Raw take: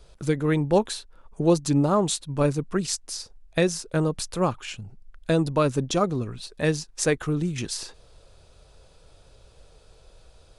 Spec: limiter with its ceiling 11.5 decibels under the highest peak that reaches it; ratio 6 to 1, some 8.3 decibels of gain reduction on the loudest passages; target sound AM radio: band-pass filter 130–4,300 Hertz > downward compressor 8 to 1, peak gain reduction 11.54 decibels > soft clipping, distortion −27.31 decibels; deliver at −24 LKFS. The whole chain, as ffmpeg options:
ffmpeg -i in.wav -af "acompressor=threshold=-23dB:ratio=6,alimiter=limit=-20.5dB:level=0:latency=1,highpass=130,lowpass=4300,acompressor=threshold=-36dB:ratio=8,asoftclip=threshold=-25.5dB,volume=17.5dB" out.wav

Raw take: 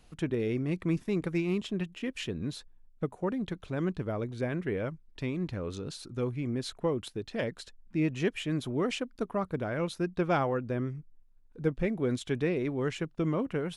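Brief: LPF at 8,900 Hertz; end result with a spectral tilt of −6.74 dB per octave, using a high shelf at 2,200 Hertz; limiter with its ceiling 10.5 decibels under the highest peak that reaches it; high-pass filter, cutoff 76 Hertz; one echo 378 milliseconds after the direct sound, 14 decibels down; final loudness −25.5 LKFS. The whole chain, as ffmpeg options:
ffmpeg -i in.wav -af "highpass=76,lowpass=8900,highshelf=frequency=2200:gain=-8,alimiter=level_in=3dB:limit=-24dB:level=0:latency=1,volume=-3dB,aecho=1:1:378:0.2,volume=11dB" out.wav

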